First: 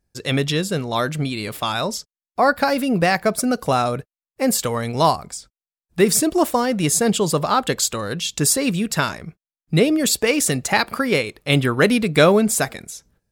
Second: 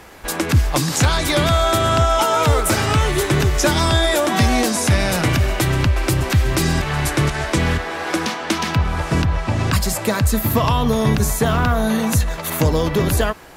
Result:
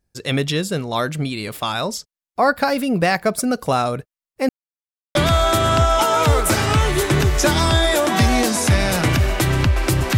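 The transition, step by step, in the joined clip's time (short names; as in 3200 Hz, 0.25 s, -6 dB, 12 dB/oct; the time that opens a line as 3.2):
first
4.49–5.15 mute
5.15 switch to second from 1.35 s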